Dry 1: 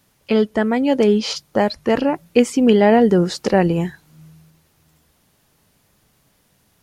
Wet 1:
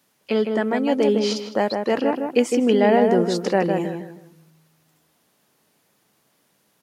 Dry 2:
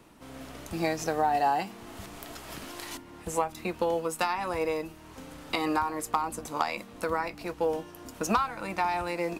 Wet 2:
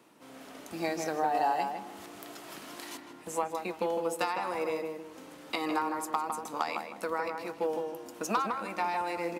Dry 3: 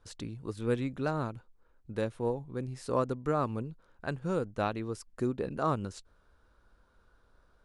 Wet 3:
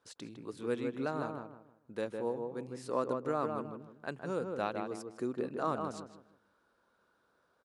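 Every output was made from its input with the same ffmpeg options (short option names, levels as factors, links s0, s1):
-filter_complex "[0:a]highpass=220,asplit=2[s0][s1];[s1]adelay=157,lowpass=f=1600:p=1,volume=0.631,asplit=2[s2][s3];[s3]adelay=157,lowpass=f=1600:p=1,volume=0.32,asplit=2[s4][s5];[s5]adelay=157,lowpass=f=1600:p=1,volume=0.32,asplit=2[s6][s7];[s7]adelay=157,lowpass=f=1600:p=1,volume=0.32[s8];[s2][s4][s6][s8]amix=inputs=4:normalize=0[s9];[s0][s9]amix=inputs=2:normalize=0,volume=0.668"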